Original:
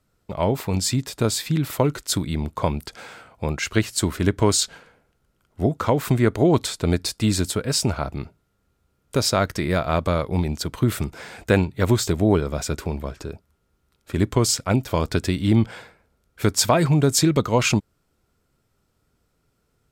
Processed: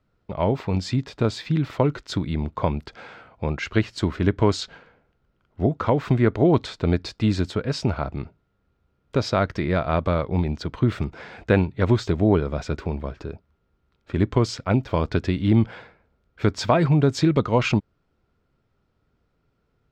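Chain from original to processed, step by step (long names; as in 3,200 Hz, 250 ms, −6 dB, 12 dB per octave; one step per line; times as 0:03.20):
high-frequency loss of the air 200 metres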